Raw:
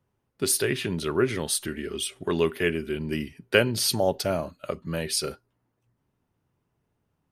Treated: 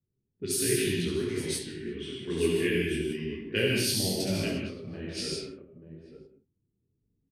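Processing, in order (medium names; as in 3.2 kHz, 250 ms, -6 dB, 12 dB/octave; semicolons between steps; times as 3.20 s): multi-tap echo 70/150/887 ms -4/-8/-12 dB; 0.92–2.20 s: compression 6:1, threshold -24 dBFS, peak gain reduction 8 dB; high-order bell 880 Hz -13.5 dB; gated-style reverb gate 230 ms flat, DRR 0.5 dB; tremolo saw up 0.64 Hz, depth 50%; level-controlled noise filter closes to 470 Hz, open at -21.5 dBFS; detune thickener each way 39 cents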